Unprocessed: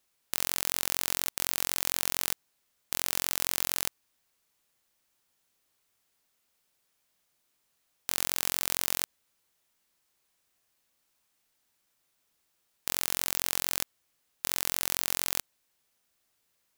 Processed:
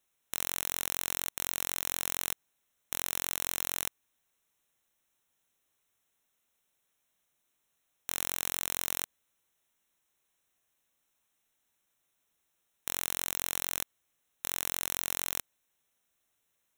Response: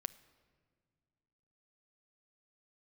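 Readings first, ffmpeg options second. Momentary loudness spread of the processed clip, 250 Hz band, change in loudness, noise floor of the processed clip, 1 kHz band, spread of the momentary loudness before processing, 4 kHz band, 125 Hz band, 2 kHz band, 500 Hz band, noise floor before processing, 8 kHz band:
7 LU, −3.0 dB, −3.5 dB, −79 dBFS, −3.0 dB, 7 LU, −5.0 dB, −3.0 dB, −3.0 dB, −3.0 dB, −76 dBFS, −3.0 dB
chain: -af "asuperstop=centerf=4700:order=8:qfactor=3.9,volume=-3dB"

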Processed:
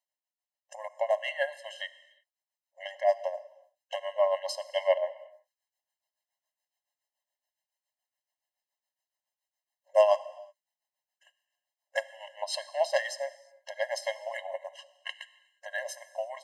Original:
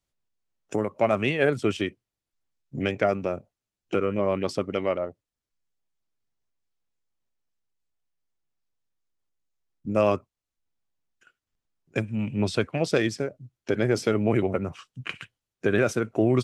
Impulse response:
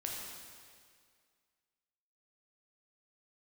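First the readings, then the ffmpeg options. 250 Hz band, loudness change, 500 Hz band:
below −40 dB, −5.0 dB, −3.5 dB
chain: -filter_complex "[0:a]dynaudnorm=framelen=620:gausssize=11:maxgain=11.5dB,bandreject=frequency=50:width_type=h:width=6,bandreject=frequency=100:width_type=h:width=6,bandreject=frequency=150:width_type=h:width=6,bandreject=frequency=200:width_type=h:width=6,bandreject=frequency=250:width_type=h:width=6,bandreject=frequency=300:width_type=h:width=6,bandreject=frequency=350:width_type=h:width=6,bandreject=frequency=400:width_type=h:width=6,tremolo=f=7.1:d=0.74,asplit=2[link_01][link_02];[1:a]atrim=start_sample=2205,afade=type=out:start_time=0.42:duration=0.01,atrim=end_sample=18963,highshelf=frequency=4900:gain=4.5[link_03];[link_02][link_03]afir=irnorm=-1:irlink=0,volume=-14dB[link_04];[link_01][link_04]amix=inputs=2:normalize=0,afftfilt=real='re*eq(mod(floor(b*sr/1024/540),2),1)':imag='im*eq(mod(floor(b*sr/1024/540),2),1)':win_size=1024:overlap=0.75,volume=-1.5dB"

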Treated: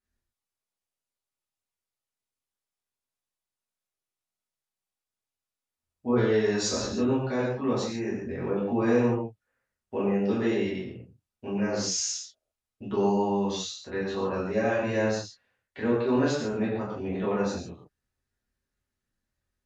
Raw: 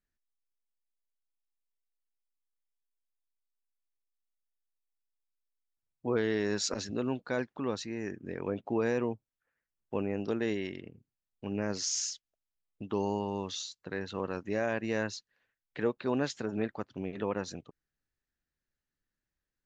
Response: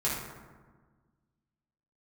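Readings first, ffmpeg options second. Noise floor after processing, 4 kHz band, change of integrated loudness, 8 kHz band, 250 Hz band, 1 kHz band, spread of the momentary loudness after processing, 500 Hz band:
below −85 dBFS, +4.0 dB, +6.5 dB, +4.0 dB, +7.0 dB, +6.5 dB, 12 LU, +6.5 dB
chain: -filter_complex "[1:a]atrim=start_sample=2205,afade=type=out:start_time=0.15:duration=0.01,atrim=end_sample=7056,asetrate=25578,aresample=44100[link_01];[0:a][link_01]afir=irnorm=-1:irlink=0,volume=-5.5dB"

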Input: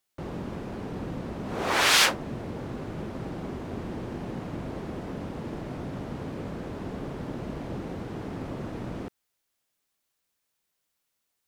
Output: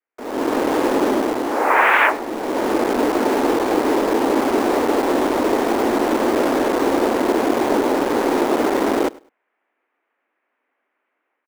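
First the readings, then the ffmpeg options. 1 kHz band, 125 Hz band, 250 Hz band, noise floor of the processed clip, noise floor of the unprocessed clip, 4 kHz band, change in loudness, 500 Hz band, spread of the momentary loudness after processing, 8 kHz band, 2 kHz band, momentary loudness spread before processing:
+16.0 dB, −4.0 dB, +15.5 dB, −75 dBFS, −80 dBFS, −1.0 dB, +12.0 dB, +19.0 dB, 4 LU, +1.0 dB, +9.5 dB, 13 LU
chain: -filter_complex "[0:a]adynamicequalizer=threshold=0.00398:dfrequency=800:dqfactor=3.1:tfrequency=800:tqfactor=3.1:attack=5:release=100:ratio=0.375:range=2.5:mode=boostabove:tftype=bell,highpass=frequency=170:width_type=q:width=0.5412,highpass=frequency=170:width_type=q:width=1.307,lowpass=frequency=2200:width_type=q:width=0.5176,lowpass=frequency=2200:width_type=q:width=0.7071,lowpass=frequency=2200:width_type=q:width=1.932,afreqshift=87,asplit=2[link_01][link_02];[link_02]acrusher=bits=5:mix=0:aa=0.000001,volume=-6.5dB[link_03];[link_01][link_03]amix=inputs=2:normalize=0,aecho=1:1:102|204:0.075|0.0165,dynaudnorm=framelen=110:gausssize=7:maxgain=16.5dB,volume=-1dB"

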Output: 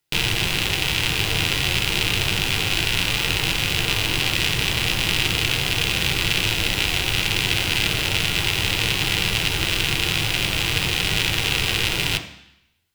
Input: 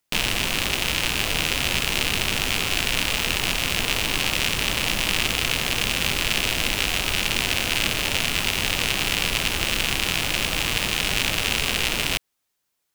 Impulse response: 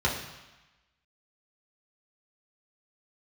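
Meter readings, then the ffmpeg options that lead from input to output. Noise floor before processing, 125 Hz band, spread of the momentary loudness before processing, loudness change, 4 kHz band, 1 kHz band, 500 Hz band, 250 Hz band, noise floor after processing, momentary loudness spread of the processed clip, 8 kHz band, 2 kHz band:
−76 dBFS, +6.5 dB, 1 LU, +2.0 dB, +2.5 dB, 0.0 dB, +0.5 dB, +2.0 dB, −49 dBFS, 1 LU, −1.0 dB, +1.5 dB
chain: -filter_complex "[0:a]asplit=2[link_01][link_02];[1:a]atrim=start_sample=2205,asetrate=57330,aresample=44100[link_03];[link_02][link_03]afir=irnorm=-1:irlink=0,volume=-13dB[link_04];[link_01][link_04]amix=inputs=2:normalize=0"

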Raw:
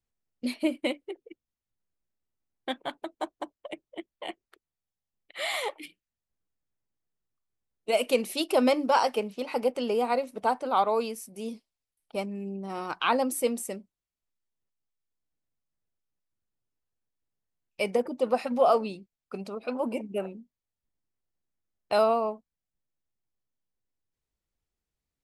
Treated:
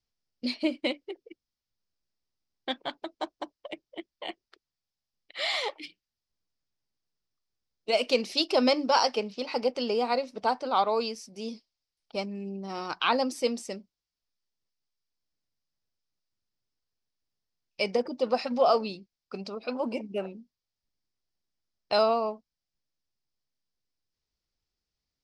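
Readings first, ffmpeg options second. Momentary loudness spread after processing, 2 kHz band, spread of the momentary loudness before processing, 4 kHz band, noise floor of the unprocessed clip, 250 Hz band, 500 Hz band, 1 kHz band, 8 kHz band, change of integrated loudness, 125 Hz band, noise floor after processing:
18 LU, +0.5 dB, 18 LU, +5.0 dB, below −85 dBFS, −1.0 dB, −1.0 dB, −1.0 dB, −4.5 dB, 0.0 dB, can't be measured, below −85 dBFS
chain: -af "lowpass=frequency=5100:width_type=q:width=3.9,volume=-1dB"

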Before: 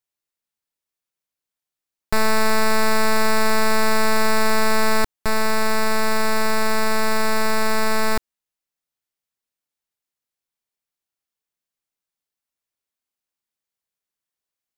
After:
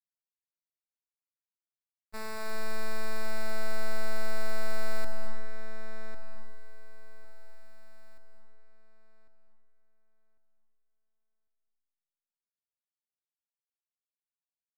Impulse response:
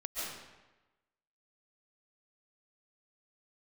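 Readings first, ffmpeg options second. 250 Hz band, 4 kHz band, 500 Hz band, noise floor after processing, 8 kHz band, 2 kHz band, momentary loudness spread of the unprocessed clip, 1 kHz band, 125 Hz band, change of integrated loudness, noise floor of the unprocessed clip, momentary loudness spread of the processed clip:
−23.0 dB, −21.0 dB, −18.0 dB, below −85 dBFS, −21.0 dB, −19.0 dB, 3 LU, −22.5 dB, can't be measured, −18.5 dB, below −85 dBFS, 20 LU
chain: -filter_complex "[0:a]agate=range=-59dB:threshold=-13dB:ratio=16:detection=peak,asplit=2[link_01][link_02];[link_02]adelay=1099,lowpass=frequency=2600:poles=1,volume=-7dB,asplit=2[link_03][link_04];[link_04]adelay=1099,lowpass=frequency=2600:poles=1,volume=0.22,asplit=2[link_05][link_06];[link_06]adelay=1099,lowpass=frequency=2600:poles=1,volume=0.22[link_07];[link_01][link_03][link_05][link_07]amix=inputs=4:normalize=0,asplit=2[link_08][link_09];[1:a]atrim=start_sample=2205,adelay=75[link_10];[link_09][link_10]afir=irnorm=-1:irlink=0,volume=-8dB[link_11];[link_08][link_11]amix=inputs=2:normalize=0,volume=13.5dB"

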